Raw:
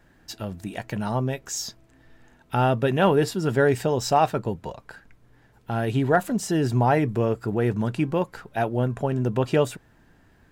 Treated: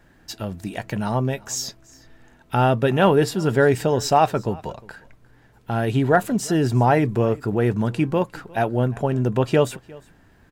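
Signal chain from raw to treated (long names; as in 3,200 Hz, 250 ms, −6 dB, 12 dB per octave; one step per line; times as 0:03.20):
single-tap delay 355 ms −23.5 dB
level +3 dB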